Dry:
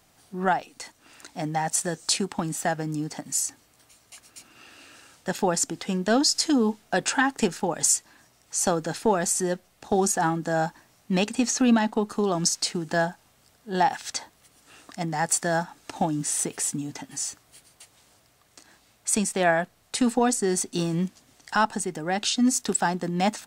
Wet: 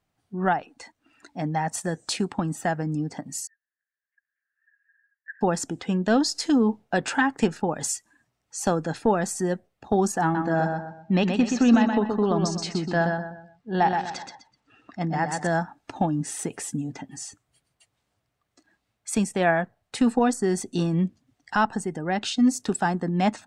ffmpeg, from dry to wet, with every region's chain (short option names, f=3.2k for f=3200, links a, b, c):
-filter_complex "[0:a]asettb=1/sr,asplit=3[a][b][c];[a]atrim=end=3.474[d];[b]atrim=start=3.47:end=5.41,asetpts=PTS-STARTPTS,afade=t=in:d=0.004:c=qsin,afade=t=out:st=1.936:d=0.004:c=qsin,aeval=exprs='if(lt(val(0),0),0.708*val(0),val(0))':c=same,asuperpass=centerf=1700:order=4:qfactor=6.3[e];[c]atrim=start=5.406[f];[d][e]acrossfade=d=0.004:c1=hsin:c2=qsin[g];[g][f]acrossfade=d=0.004:c1=qsin:c2=hsin,asettb=1/sr,asplit=3[h][i][j];[h]atrim=end=10.224[k];[i]atrim=start=10.22:end=15.47,asetpts=PTS-STARTPTS,afade=t=in:d=0.004:c=qsin,afade=t=out:st=5.246:d=0.004:c=qsin,lowpass=6k,aecho=1:1:125|250|375|500:0.562|0.202|0.0729|0.0262,atrim=end_sample=231525[l];[j]atrim=start=15.466[m];[k][l]acrossfade=d=0.004:c1=hsin:c2=qsin[n];[n][m]acrossfade=d=0.004:c1=qsin:c2=hsin,afftdn=nr=16:nf=-47,bass=f=250:g=4,treble=f=4k:g=-8"